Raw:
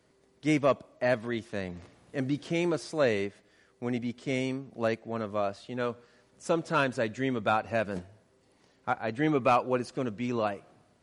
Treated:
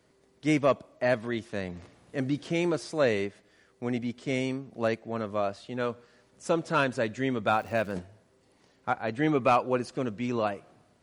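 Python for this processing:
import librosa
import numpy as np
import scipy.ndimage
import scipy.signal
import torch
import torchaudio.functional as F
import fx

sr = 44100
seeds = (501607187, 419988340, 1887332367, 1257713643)

y = fx.dmg_crackle(x, sr, seeds[0], per_s=240.0, level_db=-40.0, at=(7.49, 7.91), fade=0.02)
y = F.gain(torch.from_numpy(y), 1.0).numpy()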